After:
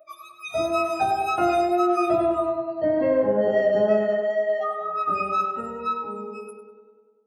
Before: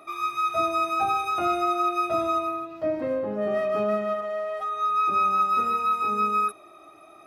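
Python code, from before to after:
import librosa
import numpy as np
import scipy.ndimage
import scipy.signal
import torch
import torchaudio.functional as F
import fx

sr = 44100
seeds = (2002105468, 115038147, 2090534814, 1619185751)

y = fx.fade_out_tail(x, sr, length_s=2.37)
y = fx.doubler(y, sr, ms=17.0, db=-12.0)
y = fx.wow_flutter(y, sr, seeds[0], rate_hz=2.1, depth_cents=24.0)
y = fx.noise_reduce_blind(y, sr, reduce_db=26)
y = fx.echo_tape(y, sr, ms=99, feedback_pct=73, wet_db=-4.0, lp_hz=2000.0, drive_db=17.0, wow_cents=7)
y = F.gain(torch.from_numpy(y), 4.5).numpy()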